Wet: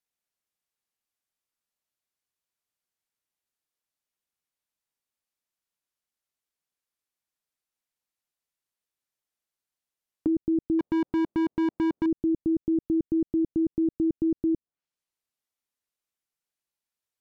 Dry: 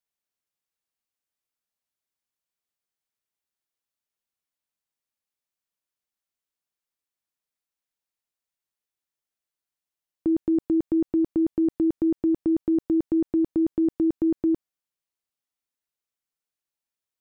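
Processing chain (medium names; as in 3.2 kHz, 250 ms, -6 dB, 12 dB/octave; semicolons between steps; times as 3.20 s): low-pass that closes with the level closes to 340 Hz, closed at -24 dBFS; 10.79–12.06 s: overdrive pedal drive 32 dB, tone 1 kHz, clips at -19 dBFS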